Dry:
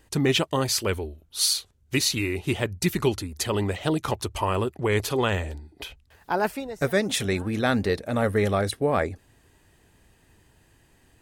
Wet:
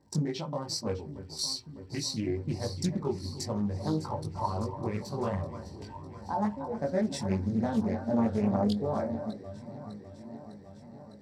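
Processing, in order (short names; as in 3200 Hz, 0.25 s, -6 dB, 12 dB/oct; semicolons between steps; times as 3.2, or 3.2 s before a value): Wiener smoothing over 15 samples; compressor 2.5:1, threshold -39 dBFS, peak gain reduction 14.5 dB; crackle 180/s -52 dBFS; echo with dull and thin repeats by turns 0.302 s, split 1900 Hz, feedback 87%, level -9 dB; spectral noise reduction 7 dB; chorus voices 4, 0.45 Hz, delay 20 ms, depth 1.7 ms; reverb RT60 0.20 s, pre-delay 3 ms, DRR 6.5 dB; Doppler distortion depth 0.35 ms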